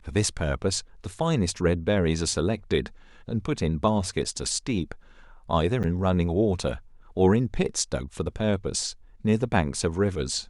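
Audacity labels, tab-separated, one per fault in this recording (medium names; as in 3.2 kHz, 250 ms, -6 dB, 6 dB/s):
5.830000	5.840000	dropout 8.3 ms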